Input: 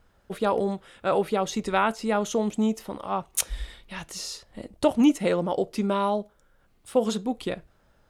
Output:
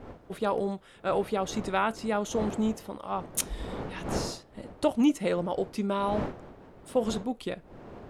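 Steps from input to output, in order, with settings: wind noise 540 Hz -37 dBFS; gain -4 dB

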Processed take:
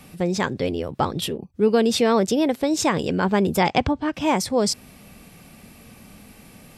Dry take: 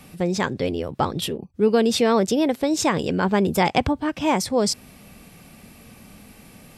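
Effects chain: 3.58–4.14 LPF 7200 Hz 24 dB/oct

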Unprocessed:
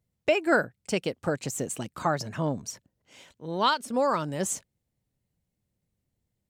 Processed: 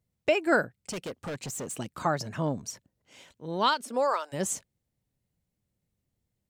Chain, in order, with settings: 0.91–1.73 hard clip -31.5 dBFS, distortion -13 dB; 3.84–4.32 HPF 210 Hz -> 700 Hz 24 dB/oct; gain -1 dB

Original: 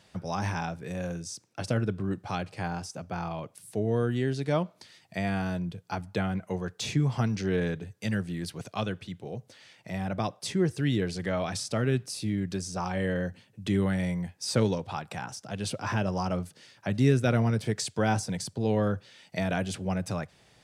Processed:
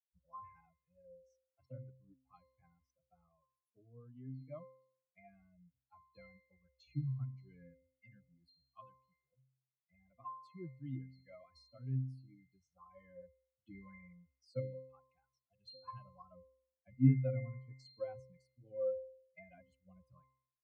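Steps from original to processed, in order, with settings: per-bin expansion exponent 3; low shelf 240 Hz -6.5 dB; octave resonator C, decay 0.59 s; gain +12 dB

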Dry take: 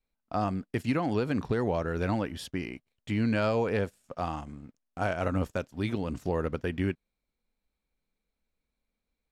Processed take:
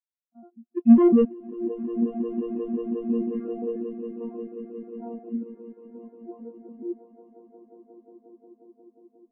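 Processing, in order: arpeggiated vocoder bare fifth, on A#3, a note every 0.139 s; 0.77–1.25 sample leveller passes 5; low-pass sweep 3000 Hz -> 970 Hz, 2.87–4.37; phaser 0.59 Hz, delay 1.2 ms, feedback 24%; swelling echo 0.179 s, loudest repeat 8, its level -8 dB; spectral expander 2.5:1; gain +6 dB

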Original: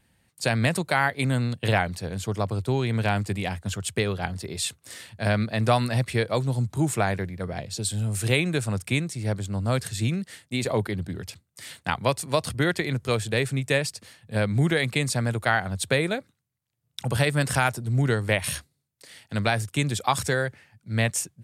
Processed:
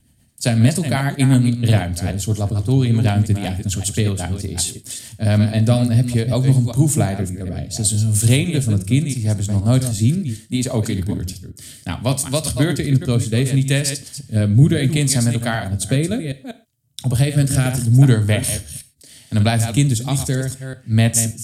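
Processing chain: reverse delay 0.192 s, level -8.5 dB; tone controls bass +12 dB, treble +14 dB; small resonant body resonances 280/640/3100 Hz, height 8 dB, ringing for 30 ms; rotary speaker horn 8 Hz, later 0.7 Hz, at 4.58; non-linear reverb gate 0.15 s falling, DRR 11 dB; gain -1 dB

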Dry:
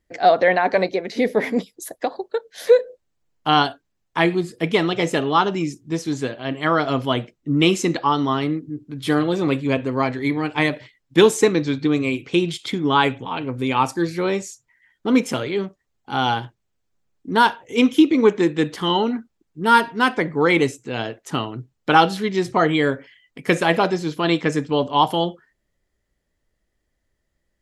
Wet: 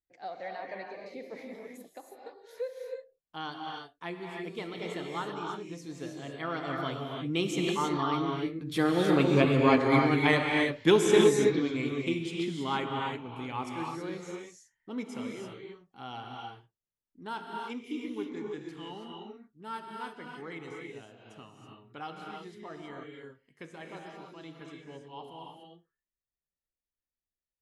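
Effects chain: Doppler pass-by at 9.73, 12 m/s, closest 9.1 m; non-linear reverb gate 0.35 s rising, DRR 0 dB; gain -3.5 dB

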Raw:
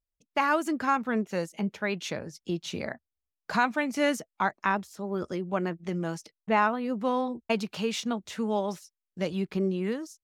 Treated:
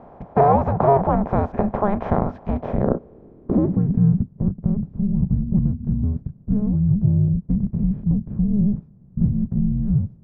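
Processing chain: per-bin compression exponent 0.4; frequency shift -410 Hz; low-pass sweep 760 Hz -> 160 Hz, 2.49–4.33; gain +3 dB

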